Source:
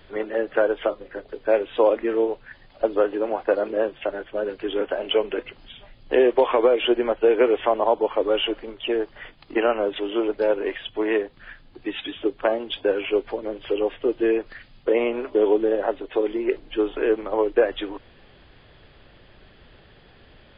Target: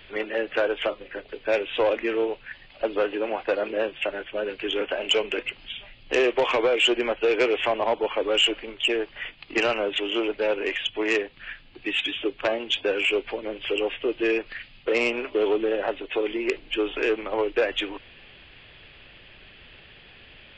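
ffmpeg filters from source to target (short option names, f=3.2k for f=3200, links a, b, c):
-af "equalizer=f=2.6k:w=1.4:g=14.5,aresample=16000,asoftclip=type=tanh:threshold=-12dB,aresample=44100,volume=-2.5dB"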